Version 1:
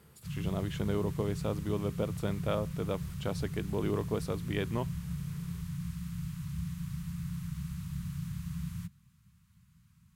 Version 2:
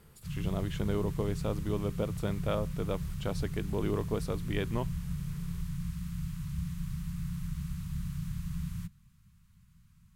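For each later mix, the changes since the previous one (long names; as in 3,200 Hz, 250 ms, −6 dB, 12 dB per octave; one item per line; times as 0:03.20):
master: remove high-pass filter 70 Hz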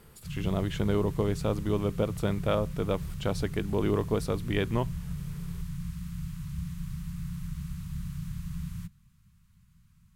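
speech +5.0 dB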